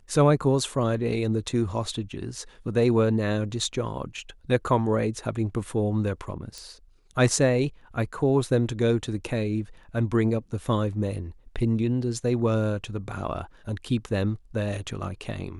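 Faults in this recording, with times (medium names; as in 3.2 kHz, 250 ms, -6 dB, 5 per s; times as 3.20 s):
6.58 s: pop -24 dBFS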